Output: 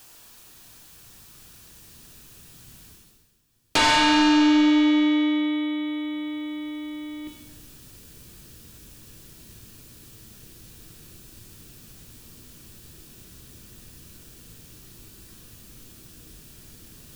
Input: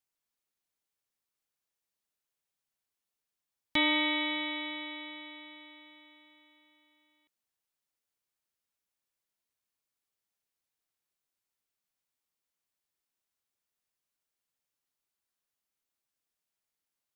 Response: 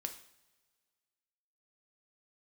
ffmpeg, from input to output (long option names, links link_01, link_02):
-filter_complex "[1:a]atrim=start_sample=2205[link_01];[0:a][link_01]afir=irnorm=-1:irlink=0,asplit=2[link_02][link_03];[link_03]acompressor=threshold=-40dB:ratio=6,volume=-1dB[link_04];[link_02][link_04]amix=inputs=2:normalize=0,bandreject=frequency=2100:width=8.3,areverse,acompressor=mode=upward:threshold=-46dB:ratio=2.5,areverse,asubboost=boost=11.5:cutoff=230,aeval=exprs='0.299*sin(PI/2*5.62*val(0)/0.299)':channel_layout=same,volume=-4.5dB"